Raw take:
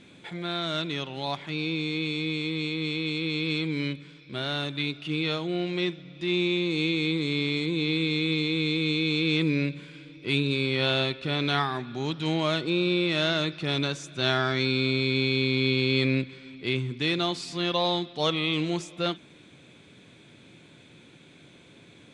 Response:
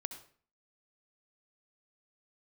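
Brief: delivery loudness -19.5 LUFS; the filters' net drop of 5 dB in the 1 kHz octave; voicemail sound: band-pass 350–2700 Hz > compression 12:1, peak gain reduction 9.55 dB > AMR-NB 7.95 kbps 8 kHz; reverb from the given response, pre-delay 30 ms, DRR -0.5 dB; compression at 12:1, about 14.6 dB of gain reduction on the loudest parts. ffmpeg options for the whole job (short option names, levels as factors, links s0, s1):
-filter_complex "[0:a]equalizer=f=1000:t=o:g=-7,acompressor=threshold=0.0158:ratio=12,asplit=2[s0][s1];[1:a]atrim=start_sample=2205,adelay=30[s2];[s1][s2]afir=irnorm=-1:irlink=0,volume=1.26[s3];[s0][s3]amix=inputs=2:normalize=0,highpass=350,lowpass=2700,acompressor=threshold=0.00708:ratio=12,volume=29.9" -ar 8000 -c:a libopencore_amrnb -b:a 7950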